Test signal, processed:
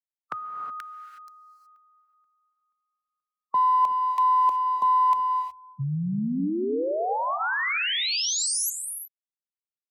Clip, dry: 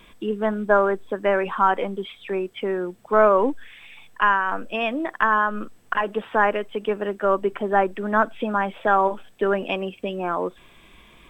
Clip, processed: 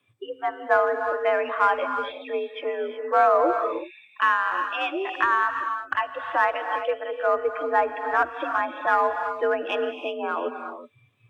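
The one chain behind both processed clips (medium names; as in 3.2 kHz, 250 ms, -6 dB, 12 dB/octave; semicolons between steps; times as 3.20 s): high-pass 42 Hz 24 dB/octave; spectral noise reduction 20 dB; in parallel at -8 dB: one-sided clip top -18 dBFS; on the sum: frequency shift +64 Hz; gated-style reverb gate 390 ms rising, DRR 6.5 dB; trim -4.5 dB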